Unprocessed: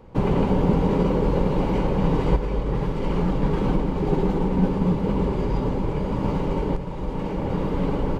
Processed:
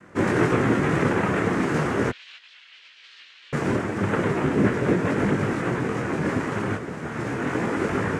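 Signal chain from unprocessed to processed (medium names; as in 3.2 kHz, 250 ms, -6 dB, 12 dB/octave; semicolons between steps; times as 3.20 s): noise-vocoded speech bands 3; 2.09–3.53 s: Butterworth band-pass 3.5 kHz, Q 2.2; detune thickener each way 13 cents; trim +4 dB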